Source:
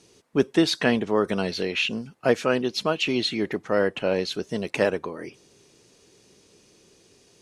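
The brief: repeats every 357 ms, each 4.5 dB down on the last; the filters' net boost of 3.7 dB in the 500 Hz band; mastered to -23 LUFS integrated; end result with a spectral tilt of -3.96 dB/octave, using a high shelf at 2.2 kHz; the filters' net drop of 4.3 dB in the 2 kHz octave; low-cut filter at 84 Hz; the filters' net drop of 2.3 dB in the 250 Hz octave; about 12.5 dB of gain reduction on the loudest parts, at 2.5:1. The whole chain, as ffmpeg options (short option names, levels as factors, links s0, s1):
-af "highpass=84,equalizer=f=250:t=o:g=-5.5,equalizer=f=500:t=o:g=6,equalizer=f=2000:t=o:g=-9,highshelf=f=2200:g=4,acompressor=threshold=0.0224:ratio=2.5,aecho=1:1:357|714|1071|1428|1785|2142|2499|2856|3213:0.596|0.357|0.214|0.129|0.0772|0.0463|0.0278|0.0167|0.01,volume=2.82"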